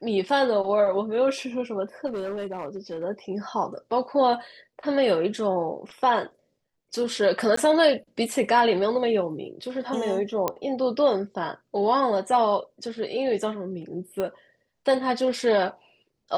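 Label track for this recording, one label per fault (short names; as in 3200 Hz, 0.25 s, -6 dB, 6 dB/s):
2.060000	3.040000	clipped -27 dBFS
7.560000	7.570000	gap 14 ms
10.480000	10.480000	pop -10 dBFS
14.200000	14.200000	pop -16 dBFS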